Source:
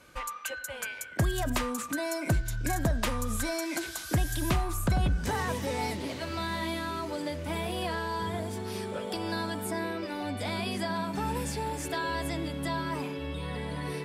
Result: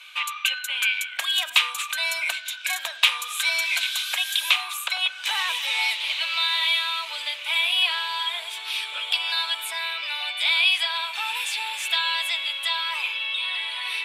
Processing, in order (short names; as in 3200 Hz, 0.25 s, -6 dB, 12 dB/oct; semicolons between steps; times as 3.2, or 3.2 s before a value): HPF 970 Hz 24 dB/oct; band shelf 3000 Hz +15 dB 1 oct; gain +5.5 dB